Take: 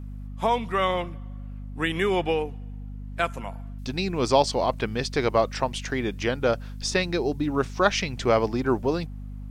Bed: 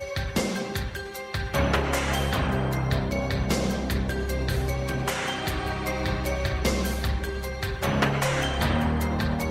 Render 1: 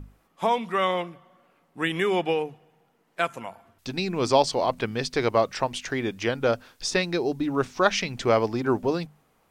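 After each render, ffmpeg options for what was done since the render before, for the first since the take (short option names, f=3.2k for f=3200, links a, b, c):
-af "bandreject=f=50:t=h:w=6,bandreject=f=100:t=h:w=6,bandreject=f=150:t=h:w=6,bandreject=f=200:t=h:w=6,bandreject=f=250:t=h:w=6"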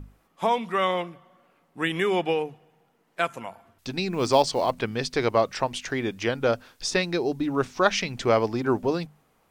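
-filter_complex "[0:a]asettb=1/sr,asplit=3[a][b][c];[a]atrim=end=4.124[d];[b]atrim=start=4.12:end=4.76,asetpts=PTS-STARTPTS,afade=t=in:d=0.004:c=qsin,afade=t=out:st=0.636:d=0.004:c=qsin,acrusher=bits=8:mode=log:mix=0:aa=0.000001[e];[c]atrim=start=4.756[f];[d][e]acrossfade=d=0.004:c1=hsin:c2=qsin[g];[g][f]acrossfade=d=0.004:c1=qsin:c2=hsin"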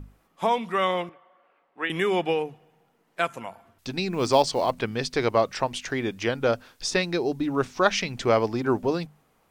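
-filter_complex "[0:a]asettb=1/sr,asplit=3[a][b][c];[a]atrim=end=1.094[d];[b]atrim=start=1.09:end=1.9,asetpts=PTS-STARTPTS,afade=t=in:d=0.004:c=qsin,afade=t=out:st=0.806:d=0.004:c=qsin,acrossover=split=360 3400:gain=0.0891 1 0.0794[e][f][g];[e][f][g]amix=inputs=3:normalize=0[h];[c]atrim=start=1.896[i];[d][h]acrossfade=d=0.004:c1=hsin:c2=qsin[j];[j][i]acrossfade=d=0.004:c1=qsin:c2=hsin"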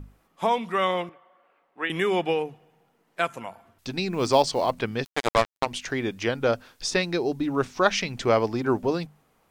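-filter_complex "[0:a]asplit=3[a][b][c];[a]afade=t=out:st=5.03:d=0.02[d];[b]acrusher=bits=2:mix=0:aa=0.5,afade=t=in:st=5.03:d=0.02,afade=t=out:st=5.65:d=0.02[e];[c]afade=t=in:st=5.65:d=0.02[f];[d][e][f]amix=inputs=3:normalize=0"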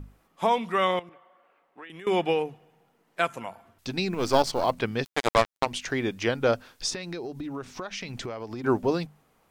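-filter_complex "[0:a]asettb=1/sr,asplit=3[a][b][c];[a]atrim=end=0.994[d];[b]atrim=start=0.99:end=2.07,asetpts=PTS-STARTPTS,afade=t=in:d=0.004:c=qsin,afade=t=out:st=1.076:d=0.004:c=qsin,acompressor=threshold=-41dB:ratio=6:attack=3.2:release=140:knee=1:detection=peak[e];[c]atrim=start=2.066[f];[d][e]acrossfade=d=0.004:c1=hsin:c2=qsin[g];[g][f]acrossfade=d=0.004:c1=qsin:c2=hsin,asettb=1/sr,asplit=3[h][i][j];[h]atrim=end=4.144[k];[i]atrim=start=4.14:end=4.64,asetpts=PTS-STARTPTS,afade=t=in:d=0.004:c=qsin,afade=t=out:st=0.496:d=0.004:c=qsin,aeval=exprs='if(lt(val(0),0),0.447*val(0),val(0))':c=same[l];[j]atrim=start=4.636[m];[k][l]acrossfade=d=0.004:c1=hsin:c2=qsin[n];[n][m]acrossfade=d=0.004:c1=qsin:c2=hsin,asettb=1/sr,asplit=3[o][p][q];[o]atrim=end=6.924[r];[p]atrim=start=6.92:end=8.64,asetpts=PTS-STARTPTS,afade=t=in:d=0.004:c=qsin,afade=t=out:st=1.716:d=0.004:c=qsin,acompressor=threshold=-31dB:ratio=12:attack=3.2:release=140:knee=1:detection=peak[s];[q]atrim=start=8.636[t];[r][s]acrossfade=d=0.004:c1=hsin:c2=qsin[u];[u][t]acrossfade=d=0.004:c1=qsin:c2=hsin"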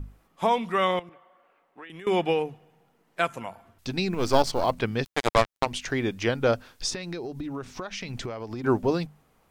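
-af "lowshelf=f=110:g=7"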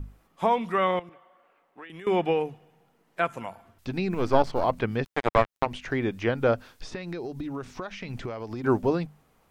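-filter_complex "[0:a]acrossover=split=2700[a][b];[b]acompressor=threshold=-50dB:ratio=4:attack=1:release=60[c];[a][c]amix=inputs=2:normalize=0"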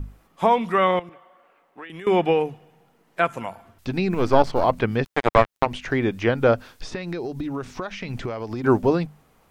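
-af "volume=5dB,alimiter=limit=-2dB:level=0:latency=1"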